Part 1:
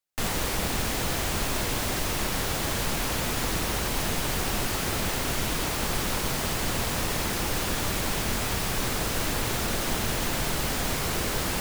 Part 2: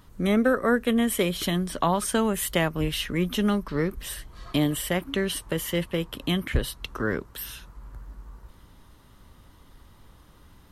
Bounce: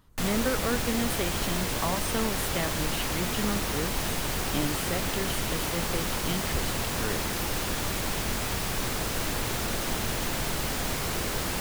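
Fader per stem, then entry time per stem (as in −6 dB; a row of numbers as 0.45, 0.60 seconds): −2.0, −7.5 decibels; 0.00, 0.00 seconds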